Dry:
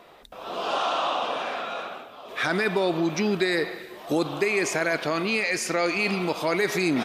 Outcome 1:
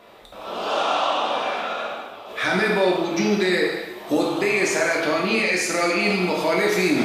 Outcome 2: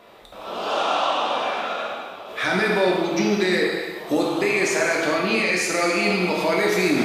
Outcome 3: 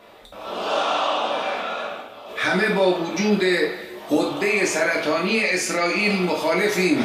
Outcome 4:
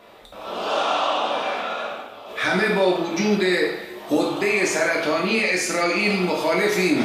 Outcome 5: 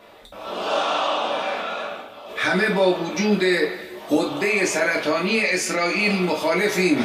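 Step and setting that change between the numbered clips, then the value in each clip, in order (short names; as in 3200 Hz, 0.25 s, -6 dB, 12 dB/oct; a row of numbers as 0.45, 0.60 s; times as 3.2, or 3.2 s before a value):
non-linear reverb, gate: 320, 470, 130, 200, 90 ms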